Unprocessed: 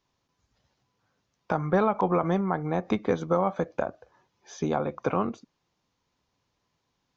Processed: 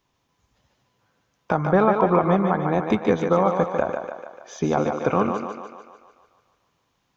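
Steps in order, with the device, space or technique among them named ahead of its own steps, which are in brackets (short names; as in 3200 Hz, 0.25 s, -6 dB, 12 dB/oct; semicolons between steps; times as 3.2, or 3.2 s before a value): 1.63–2.38 Bessel low-pass 3800 Hz; thinning echo 0.147 s, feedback 59%, high-pass 250 Hz, level -5 dB; exciter from parts (in parallel at -8 dB: HPF 3300 Hz 12 dB/oct + soft clip -38.5 dBFS, distortion -17 dB + HPF 3200 Hz 24 dB/oct); on the sum: gain +5 dB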